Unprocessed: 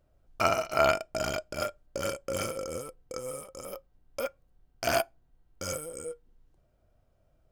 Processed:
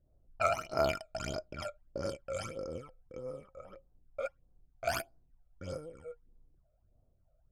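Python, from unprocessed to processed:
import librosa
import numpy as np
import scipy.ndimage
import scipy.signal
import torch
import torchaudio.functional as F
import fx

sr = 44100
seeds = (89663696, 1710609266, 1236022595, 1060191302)

y = fx.env_lowpass(x, sr, base_hz=1000.0, full_db=-25.0)
y = fx.phaser_stages(y, sr, stages=12, low_hz=290.0, high_hz=3000.0, hz=1.6, feedback_pct=45)
y = F.gain(torch.from_numpy(y), -4.0).numpy()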